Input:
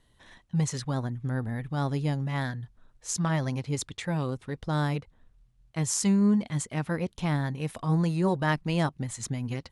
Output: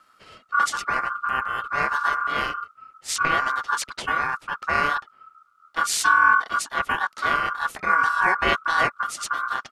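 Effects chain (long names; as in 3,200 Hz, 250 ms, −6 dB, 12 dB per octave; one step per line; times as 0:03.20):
pitch-shifted copies added −12 semitones −11 dB, −4 semitones −2 dB
ring modulation 1,300 Hz
level +5.5 dB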